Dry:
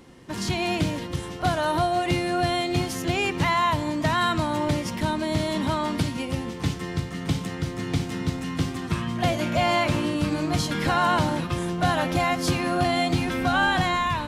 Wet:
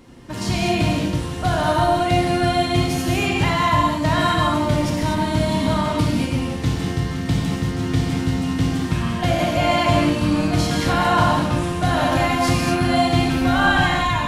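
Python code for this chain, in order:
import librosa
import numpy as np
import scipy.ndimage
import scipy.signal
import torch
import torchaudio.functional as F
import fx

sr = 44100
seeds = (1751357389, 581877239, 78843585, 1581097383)

y = fx.low_shelf(x, sr, hz=130.0, db=7.5)
y = fx.rev_gated(y, sr, seeds[0], gate_ms=270, shape='flat', drr_db=-2.5)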